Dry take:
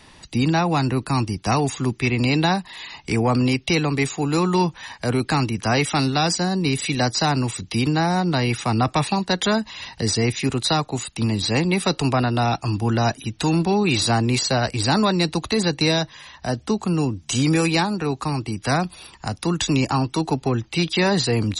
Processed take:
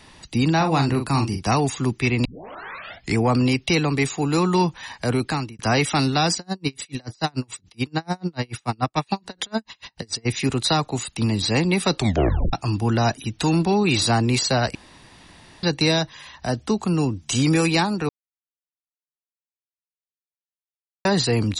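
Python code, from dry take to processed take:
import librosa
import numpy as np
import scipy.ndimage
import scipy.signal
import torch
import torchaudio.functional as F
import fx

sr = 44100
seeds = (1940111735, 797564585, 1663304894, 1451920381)

y = fx.doubler(x, sr, ms=43.0, db=-7.0, at=(0.56, 1.45))
y = fx.tremolo_db(y, sr, hz=6.9, depth_db=38, at=(6.34, 10.25), fade=0.02)
y = fx.edit(y, sr, fx.tape_start(start_s=2.25, length_s=0.92),
    fx.fade_out_span(start_s=5.02, length_s=0.57, curve='qsin'),
    fx.tape_stop(start_s=11.96, length_s=0.57),
    fx.room_tone_fill(start_s=14.75, length_s=0.88),
    fx.silence(start_s=18.09, length_s=2.96), tone=tone)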